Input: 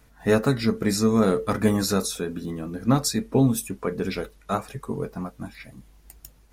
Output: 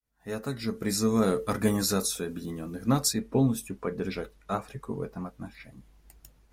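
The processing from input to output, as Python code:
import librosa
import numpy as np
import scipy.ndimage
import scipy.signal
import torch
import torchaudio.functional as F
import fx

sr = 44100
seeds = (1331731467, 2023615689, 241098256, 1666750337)

y = fx.fade_in_head(x, sr, length_s=1.13)
y = fx.high_shelf(y, sr, hz=5300.0, db=fx.steps((0.0, 6.5), (3.12, -5.0)))
y = F.gain(torch.from_numpy(y), -4.5).numpy()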